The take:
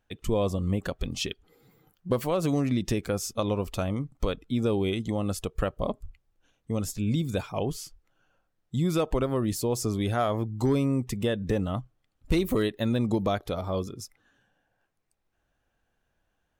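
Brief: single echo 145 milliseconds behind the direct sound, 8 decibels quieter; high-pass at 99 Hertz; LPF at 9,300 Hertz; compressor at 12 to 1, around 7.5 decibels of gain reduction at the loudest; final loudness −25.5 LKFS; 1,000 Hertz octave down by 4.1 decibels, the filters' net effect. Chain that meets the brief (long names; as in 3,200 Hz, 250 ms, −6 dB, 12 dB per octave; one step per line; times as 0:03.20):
high-pass filter 99 Hz
low-pass filter 9,300 Hz
parametric band 1,000 Hz −6 dB
downward compressor 12 to 1, threshold −29 dBFS
single-tap delay 145 ms −8 dB
level +9.5 dB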